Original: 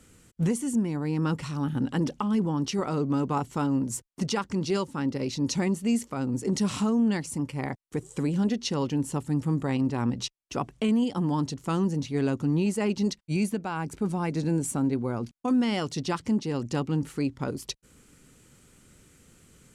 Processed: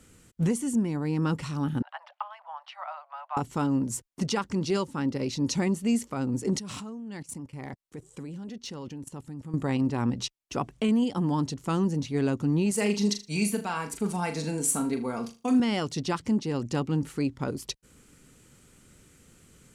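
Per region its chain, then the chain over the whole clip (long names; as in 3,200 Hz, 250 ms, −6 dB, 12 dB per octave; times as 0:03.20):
0:01.82–0:03.37: Butterworth high-pass 630 Hz 96 dB per octave + high-frequency loss of the air 460 metres
0:06.59–0:09.54: output level in coarse steps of 19 dB + gain into a clipping stage and back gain 30.5 dB
0:12.71–0:15.60: spectral tilt +2 dB per octave + comb filter 4.4 ms, depth 50% + flutter between parallel walls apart 6.7 metres, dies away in 0.29 s
whole clip: no processing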